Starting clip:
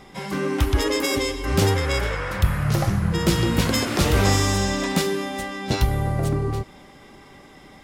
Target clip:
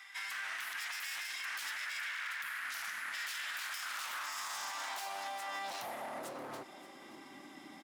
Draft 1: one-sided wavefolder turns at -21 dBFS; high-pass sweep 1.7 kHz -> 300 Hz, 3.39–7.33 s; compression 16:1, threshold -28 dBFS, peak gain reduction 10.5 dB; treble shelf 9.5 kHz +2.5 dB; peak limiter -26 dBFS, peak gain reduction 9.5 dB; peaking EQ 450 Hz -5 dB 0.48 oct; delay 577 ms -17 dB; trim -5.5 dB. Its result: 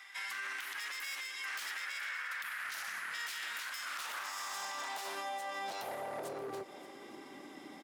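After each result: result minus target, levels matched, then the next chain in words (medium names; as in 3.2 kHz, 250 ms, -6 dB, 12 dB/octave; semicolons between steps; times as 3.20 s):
compression: peak gain reduction +10.5 dB; one-sided wavefolder: distortion -10 dB; 500 Hz band +4.5 dB
one-sided wavefolder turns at -21 dBFS; high-pass sweep 1.7 kHz -> 300 Hz, 3.39–7.33 s; treble shelf 9.5 kHz +2.5 dB; peak limiter -26 dBFS, peak gain reduction 15.5 dB; peaking EQ 450 Hz -5 dB 0.48 oct; delay 577 ms -17 dB; trim -5.5 dB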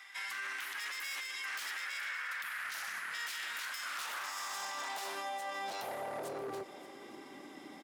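one-sided wavefolder: distortion -10 dB; 500 Hz band +4.5 dB
one-sided wavefolder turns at -28.5 dBFS; high-pass sweep 1.7 kHz -> 300 Hz, 3.39–7.33 s; treble shelf 9.5 kHz +2.5 dB; peak limiter -26 dBFS, peak gain reduction 15.5 dB; peaking EQ 450 Hz -5 dB 0.48 oct; delay 577 ms -17 dB; trim -5.5 dB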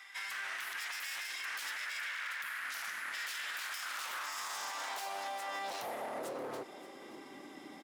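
500 Hz band +4.0 dB
one-sided wavefolder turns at -28.5 dBFS; high-pass sweep 1.7 kHz -> 300 Hz, 3.39–7.33 s; treble shelf 9.5 kHz +2.5 dB; peak limiter -26 dBFS, peak gain reduction 15.5 dB; peaking EQ 450 Hz -16.5 dB 0.48 oct; delay 577 ms -17 dB; trim -5.5 dB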